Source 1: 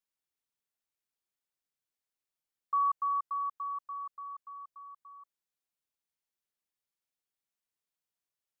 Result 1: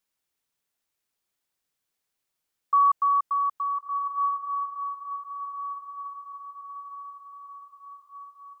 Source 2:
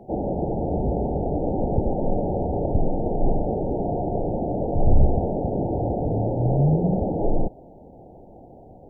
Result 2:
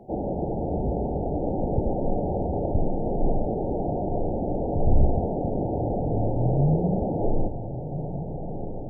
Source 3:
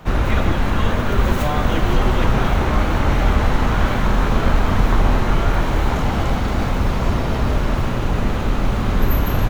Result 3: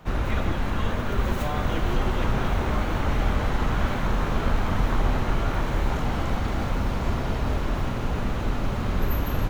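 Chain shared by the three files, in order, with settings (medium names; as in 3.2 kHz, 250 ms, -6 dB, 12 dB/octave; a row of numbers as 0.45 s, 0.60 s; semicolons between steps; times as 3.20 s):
echo that smears into a reverb 1399 ms, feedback 52%, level -9.5 dB; normalise loudness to -27 LUFS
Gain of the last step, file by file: +8.5 dB, -2.5 dB, -7.5 dB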